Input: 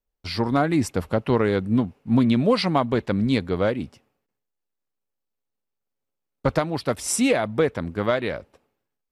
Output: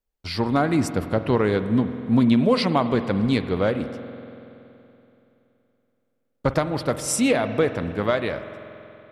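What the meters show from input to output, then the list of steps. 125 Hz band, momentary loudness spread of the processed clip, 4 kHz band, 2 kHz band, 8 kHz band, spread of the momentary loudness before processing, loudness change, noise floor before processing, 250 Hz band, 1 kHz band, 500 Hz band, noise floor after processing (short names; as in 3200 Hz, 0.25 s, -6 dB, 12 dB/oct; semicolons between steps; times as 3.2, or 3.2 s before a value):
+0.5 dB, 13 LU, 0.0 dB, +0.5 dB, 0.0 dB, 7 LU, +0.5 dB, -82 dBFS, +1.0 dB, +0.5 dB, +0.5 dB, -73 dBFS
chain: spring tank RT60 3.1 s, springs 47 ms, chirp 75 ms, DRR 10 dB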